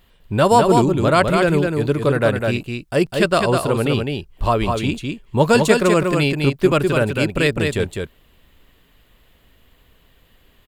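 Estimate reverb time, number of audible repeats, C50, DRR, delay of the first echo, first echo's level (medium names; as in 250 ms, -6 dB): no reverb, 1, no reverb, no reverb, 203 ms, -4.5 dB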